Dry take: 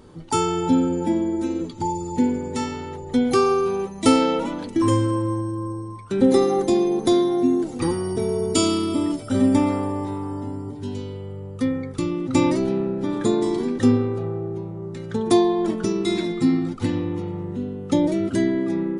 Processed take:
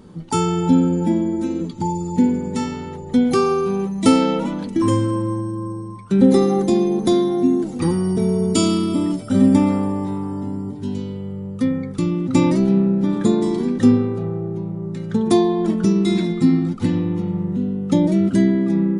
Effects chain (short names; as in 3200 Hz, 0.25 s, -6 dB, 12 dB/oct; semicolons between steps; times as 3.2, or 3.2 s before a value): bell 190 Hz +13 dB 0.49 oct